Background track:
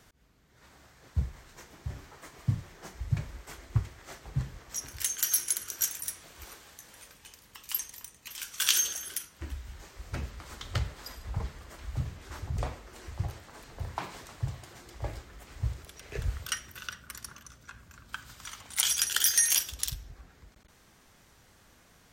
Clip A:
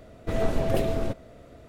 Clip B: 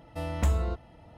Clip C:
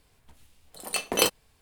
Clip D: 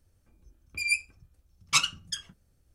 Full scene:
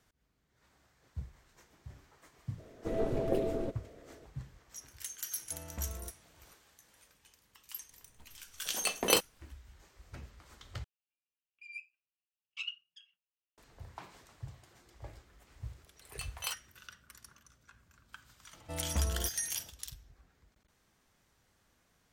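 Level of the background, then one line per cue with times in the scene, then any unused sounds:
background track -12 dB
2.58 add A -13 dB + bell 390 Hz +12 dB 1.4 oct
5.35 add B -15 dB
7.91 add C -4 dB
10.84 replace with D -7.5 dB + band-pass 2800 Hz, Q 11
15.25 add C -14.5 dB + HPF 830 Hz 24 dB/oct
18.53 add B -7 dB

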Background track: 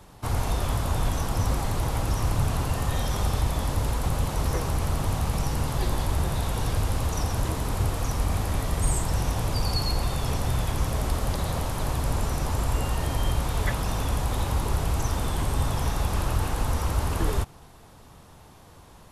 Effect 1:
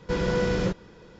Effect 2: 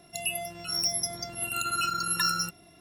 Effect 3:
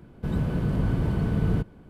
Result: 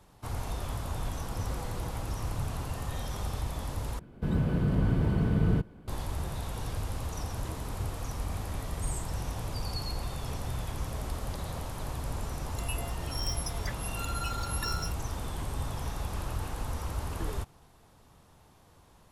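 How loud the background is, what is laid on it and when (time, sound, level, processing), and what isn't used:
background track -9 dB
1.23 add 1 -8.5 dB + compressor, threshold -37 dBFS
3.99 replace with 3 -1.5 dB
12.43 add 2 -9 dB

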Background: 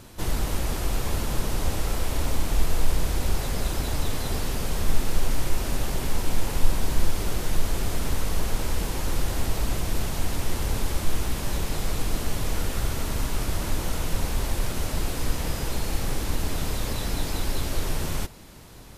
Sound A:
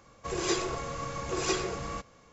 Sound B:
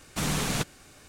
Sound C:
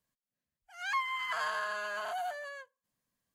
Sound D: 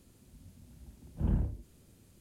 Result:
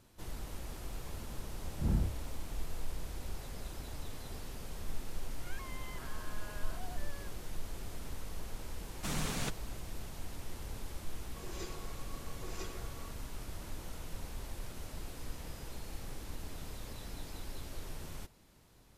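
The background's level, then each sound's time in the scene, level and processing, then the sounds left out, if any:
background -17 dB
0.61 add D -1.5 dB
4.66 add C -10.5 dB + limiter -34 dBFS
8.87 add B -9 dB
11.11 add A -17.5 dB

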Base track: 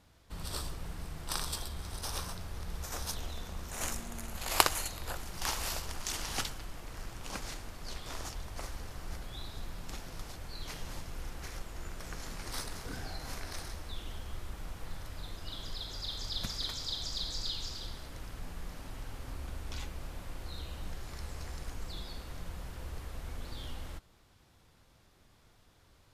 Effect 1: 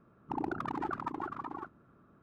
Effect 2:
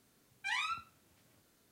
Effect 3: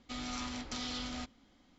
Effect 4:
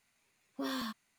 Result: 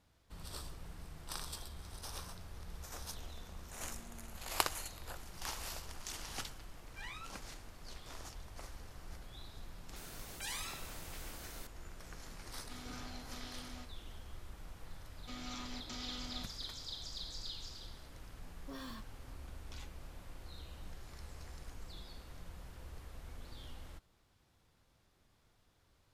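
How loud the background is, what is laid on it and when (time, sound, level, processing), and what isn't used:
base track -8 dB
6.52 add 2 -12.5 dB
9.96 add 2 -6.5 dB + spectral compressor 4:1
12.6 add 3 -11 dB
15.18 add 3 -6.5 dB
18.09 add 4 -10.5 dB
not used: 1

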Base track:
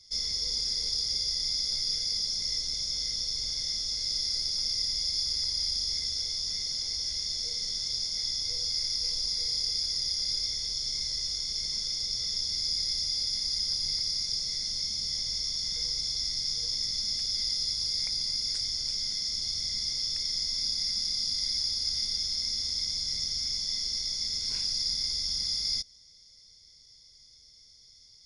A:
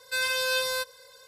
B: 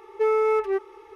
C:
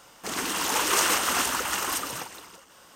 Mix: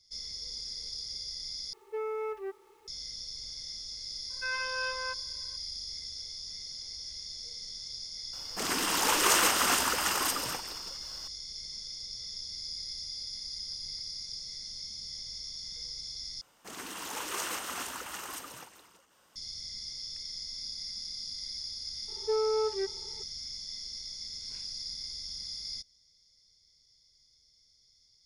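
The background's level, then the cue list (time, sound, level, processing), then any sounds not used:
base track -9.5 dB
1.73 replace with B -13.5 dB + bit-crush 9-bit
4.3 add A -4.5 dB + speaker cabinet 470–2300 Hz, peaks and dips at 480 Hz -4 dB, 750 Hz -7 dB, 1100 Hz +5 dB
8.33 add C -1.5 dB
16.41 replace with C -12.5 dB
22.08 add B -11.5 dB + comb 2.1 ms, depth 72%

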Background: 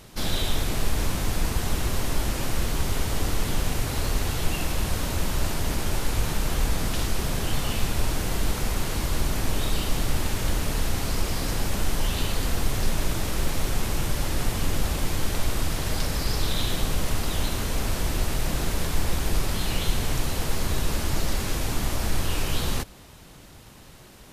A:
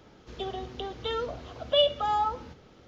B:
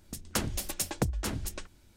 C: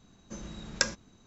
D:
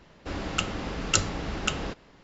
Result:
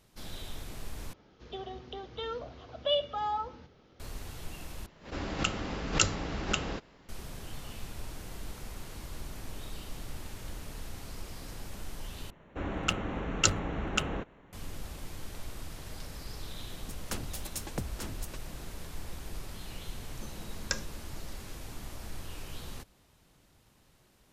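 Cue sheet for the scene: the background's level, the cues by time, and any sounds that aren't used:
background -16.5 dB
1.13 replace with A -6 dB + LPF 6400 Hz 24 dB/oct
4.86 replace with D -3 dB + backwards sustainer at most 150 dB/s
12.3 replace with D -1.5 dB + Wiener smoothing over 9 samples
16.76 add B -7 dB
19.9 add C -6 dB

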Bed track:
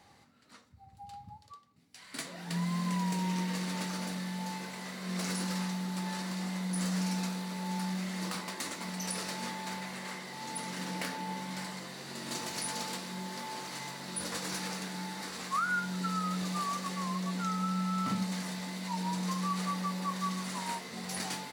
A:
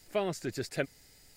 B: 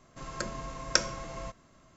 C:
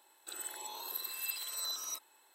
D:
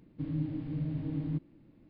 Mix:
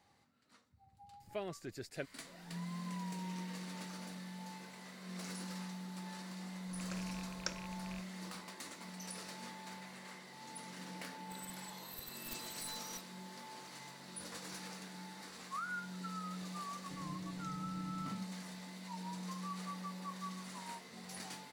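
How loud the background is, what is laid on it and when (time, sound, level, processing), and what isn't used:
bed track -10.5 dB
1.2 add A -10.5 dB
6.51 add B -15.5 dB + rattling part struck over -40 dBFS, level -22 dBFS
11.03 add C -8 dB + one-sided fold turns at -37 dBFS
16.71 add D -16.5 dB

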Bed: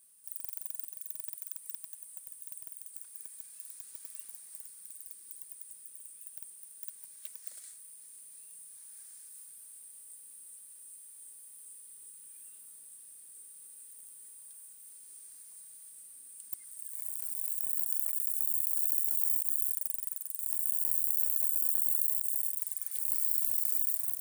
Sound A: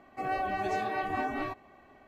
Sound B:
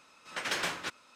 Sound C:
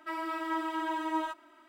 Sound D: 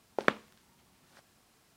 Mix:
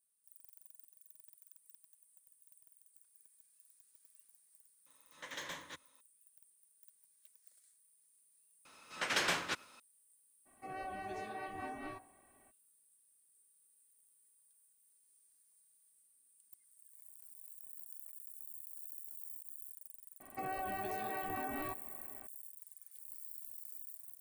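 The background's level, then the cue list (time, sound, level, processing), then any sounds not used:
bed -19 dB
4.86 add B -13.5 dB + ripple EQ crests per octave 1.1, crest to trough 9 dB
8.65 add B -0.5 dB + outdoor echo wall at 17 m, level -29 dB
10.45 add A -11.5 dB, fades 0.02 s + de-hum 58.18 Hz, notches 29
20.2 add A -1 dB + compressor, threshold -36 dBFS
not used: C, D

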